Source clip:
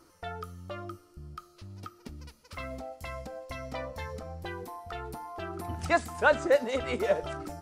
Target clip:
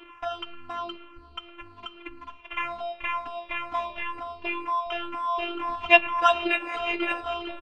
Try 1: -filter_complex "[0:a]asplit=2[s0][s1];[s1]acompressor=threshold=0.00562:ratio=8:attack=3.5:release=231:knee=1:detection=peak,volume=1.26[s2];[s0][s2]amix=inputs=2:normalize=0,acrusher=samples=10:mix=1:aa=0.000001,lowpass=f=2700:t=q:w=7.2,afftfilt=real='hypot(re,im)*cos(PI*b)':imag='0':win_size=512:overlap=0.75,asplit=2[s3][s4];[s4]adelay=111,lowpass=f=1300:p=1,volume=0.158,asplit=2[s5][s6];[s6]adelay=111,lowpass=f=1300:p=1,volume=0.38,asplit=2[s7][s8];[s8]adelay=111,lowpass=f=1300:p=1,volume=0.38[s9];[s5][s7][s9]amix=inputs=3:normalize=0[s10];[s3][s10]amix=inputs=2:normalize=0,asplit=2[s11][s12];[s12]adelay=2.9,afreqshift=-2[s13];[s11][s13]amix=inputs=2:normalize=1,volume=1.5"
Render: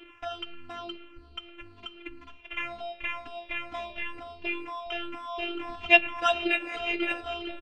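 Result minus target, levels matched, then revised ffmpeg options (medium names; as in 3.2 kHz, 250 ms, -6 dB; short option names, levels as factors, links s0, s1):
1 kHz band -4.5 dB
-filter_complex "[0:a]asplit=2[s0][s1];[s1]acompressor=threshold=0.00562:ratio=8:attack=3.5:release=231:knee=1:detection=peak,volume=1.26[s2];[s0][s2]amix=inputs=2:normalize=0,acrusher=samples=10:mix=1:aa=0.000001,lowpass=f=2700:t=q:w=7.2,equalizer=f=1000:t=o:w=0.74:g=12.5,afftfilt=real='hypot(re,im)*cos(PI*b)':imag='0':win_size=512:overlap=0.75,asplit=2[s3][s4];[s4]adelay=111,lowpass=f=1300:p=1,volume=0.158,asplit=2[s5][s6];[s6]adelay=111,lowpass=f=1300:p=1,volume=0.38,asplit=2[s7][s8];[s8]adelay=111,lowpass=f=1300:p=1,volume=0.38[s9];[s5][s7][s9]amix=inputs=3:normalize=0[s10];[s3][s10]amix=inputs=2:normalize=0,asplit=2[s11][s12];[s12]adelay=2.9,afreqshift=-2[s13];[s11][s13]amix=inputs=2:normalize=1,volume=1.5"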